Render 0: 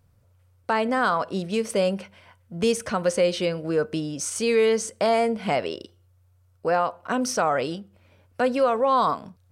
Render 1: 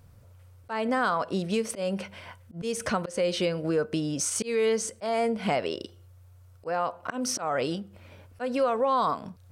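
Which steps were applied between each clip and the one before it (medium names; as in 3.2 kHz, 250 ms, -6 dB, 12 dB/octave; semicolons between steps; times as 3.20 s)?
slow attack 253 ms; compression 2:1, threshold -39 dBFS, peak gain reduction 12 dB; trim +7.5 dB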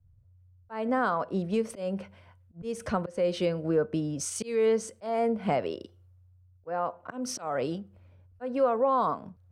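treble shelf 2 kHz -12 dB; three bands expanded up and down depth 70%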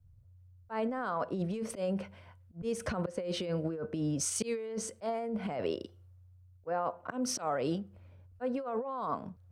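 compressor with a negative ratio -31 dBFS, ratio -1; trim -2.5 dB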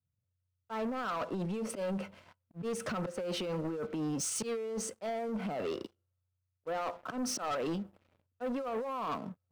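Chebyshev high-pass 180 Hz, order 2; small resonant body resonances 1.3/2.7 kHz, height 9 dB; waveshaping leveller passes 3; trim -8.5 dB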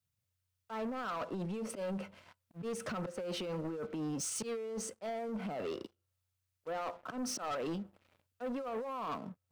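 tape noise reduction on one side only encoder only; trim -3 dB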